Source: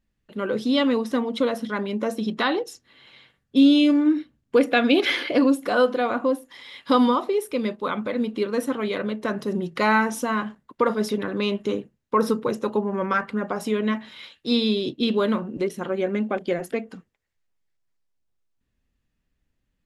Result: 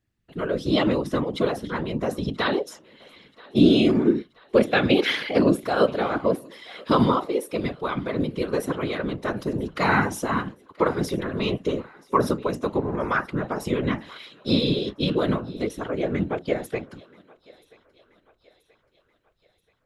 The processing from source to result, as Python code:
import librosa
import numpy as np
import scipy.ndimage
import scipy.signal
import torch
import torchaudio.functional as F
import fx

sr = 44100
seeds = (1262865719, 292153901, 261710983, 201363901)

y = fx.whisperise(x, sr, seeds[0])
y = fx.echo_thinned(y, sr, ms=980, feedback_pct=53, hz=420.0, wet_db=-23.0)
y = F.gain(torch.from_numpy(y), -1.0).numpy()